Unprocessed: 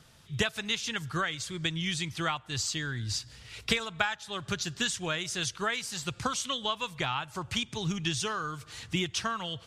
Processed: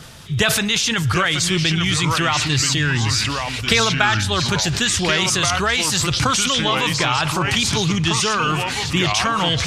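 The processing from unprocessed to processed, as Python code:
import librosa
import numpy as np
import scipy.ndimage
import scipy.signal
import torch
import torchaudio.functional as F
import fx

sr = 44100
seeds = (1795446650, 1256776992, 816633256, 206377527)

p1 = fx.over_compress(x, sr, threshold_db=-36.0, ratio=-0.5)
p2 = x + (p1 * 10.0 ** (-0.5 / 20.0))
p3 = fx.echo_pitch(p2, sr, ms=668, semitones=-3, count=2, db_per_echo=-6.0)
p4 = fx.sustainer(p3, sr, db_per_s=28.0)
y = p4 * 10.0 ** (9.0 / 20.0)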